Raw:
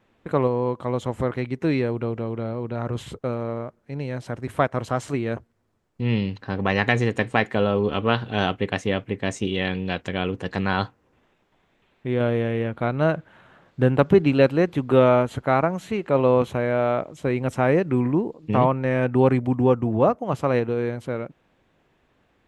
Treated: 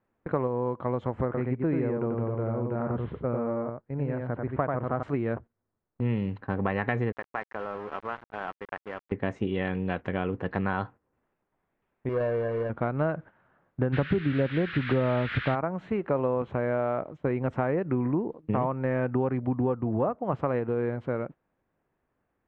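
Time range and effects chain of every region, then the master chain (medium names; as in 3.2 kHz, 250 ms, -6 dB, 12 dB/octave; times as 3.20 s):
1.25–5.03 s: distance through air 400 m + delay 90 ms -3.5 dB
7.12–9.12 s: compression 4:1, threshold -23 dBFS + band-pass filter 1.3 kHz, Q 0.76 + small samples zeroed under -36.5 dBFS
12.09–12.70 s: median filter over 41 samples + peaking EQ 96 Hz -9 dB 2.9 oct + comb 1.8 ms, depth 62%
13.92–15.54 s: bass shelf 230 Hz +12 dB + band noise 1.4–3.9 kHz -24 dBFS
whole clip: gate -39 dBFS, range -12 dB; Chebyshev low-pass 1.5 kHz, order 2; compression, threshold -23 dBFS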